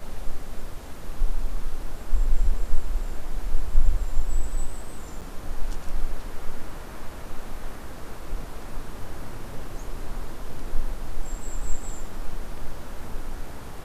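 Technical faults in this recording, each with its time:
0:05.21–0:05.22: drop-out 7.7 ms

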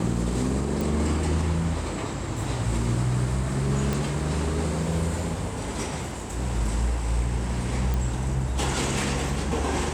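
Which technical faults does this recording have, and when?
0:00.81: click
0:03.93: click
0:07.94: click

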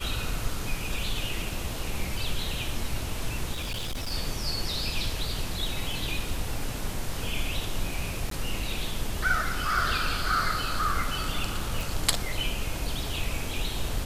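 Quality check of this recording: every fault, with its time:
0:03.52–0:04.12: clipping −28 dBFS
0:08.30–0:08.31: drop-out 13 ms
0:11.81: click

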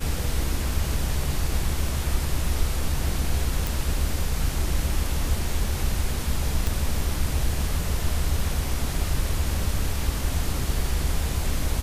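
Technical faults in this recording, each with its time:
0:03.67: click
0:06.67: click

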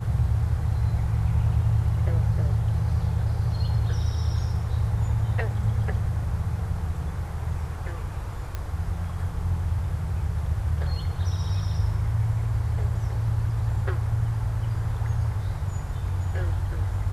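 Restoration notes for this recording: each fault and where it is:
0:08.55: click −17 dBFS

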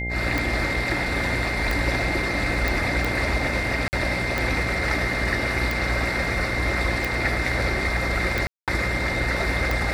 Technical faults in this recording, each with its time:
mains buzz 60 Hz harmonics 14 −30 dBFS
scratch tick 45 rpm
whistle 2,100 Hz −28 dBFS
0:02.68: click
0:03.88–0:03.93: drop-out 49 ms
0:08.47–0:08.68: drop-out 207 ms

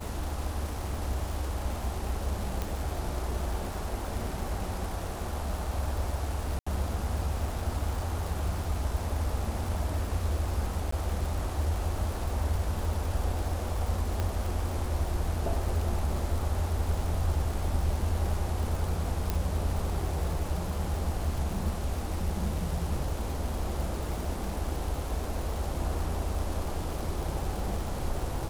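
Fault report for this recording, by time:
surface crackle 210 per second −35 dBFS
0:02.62: click
0:06.59–0:06.67: drop-out 75 ms
0:10.91–0:10.92: drop-out 14 ms
0:14.20: click −17 dBFS
0:19.30: click −14 dBFS

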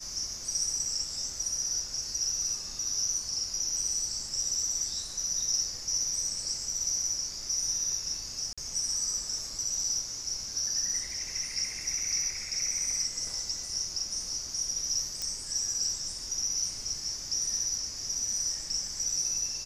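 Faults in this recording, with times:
0:08.53–0:08.58: drop-out 46 ms
0:15.22: click −18 dBFS

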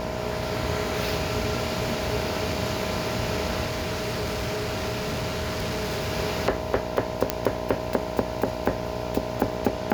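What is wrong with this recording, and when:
mains buzz 60 Hz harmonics 17 −33 dBFS
whistle 630 Hz −33 dBFS
0:03.65–0:06.12: clipping −24.5 dBFS
0:07.30: click −5 dBFS

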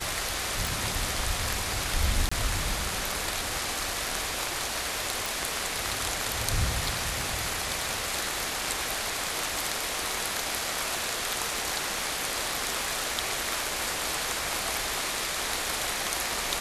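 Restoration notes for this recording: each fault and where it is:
surface crackle 19 per second −35 dBFS
0:00.67: click
0:02.29–0:02.31: drop-out 25 ms
0:05.26: click

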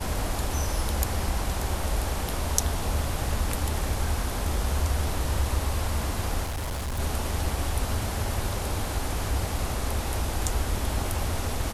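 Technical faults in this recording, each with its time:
0:06.43–0:07.00: clipping −27.5 dBFS

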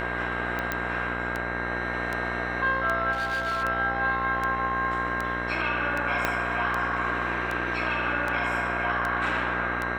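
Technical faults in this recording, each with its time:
mains buzz 60 Hz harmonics 36 −33 dBFS
scratch tick 78 rpm −16 dBFS
whistle 1,600 Hz −32 dBFS
0:00.72: click −12 dBFS
0:03.12–0:03.64: clipping −24.5 dBFS
0:06.25: click −9 dBFS

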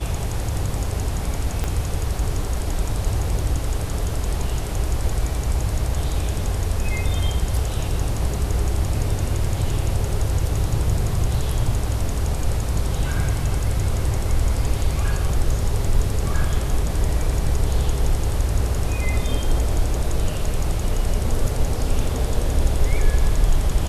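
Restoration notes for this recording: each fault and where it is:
0:01.64: click −11 dBFS

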